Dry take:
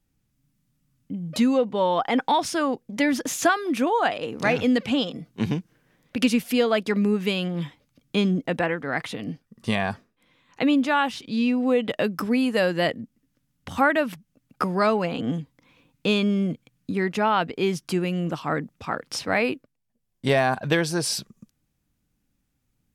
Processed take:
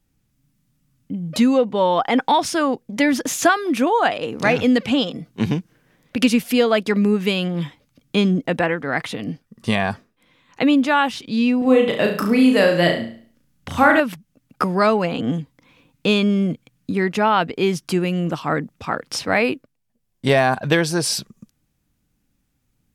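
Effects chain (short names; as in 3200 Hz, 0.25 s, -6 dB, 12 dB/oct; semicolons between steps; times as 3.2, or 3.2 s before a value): 11.58–14 flutter echo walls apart 6 m, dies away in 0.48 s; gain +4.5 dB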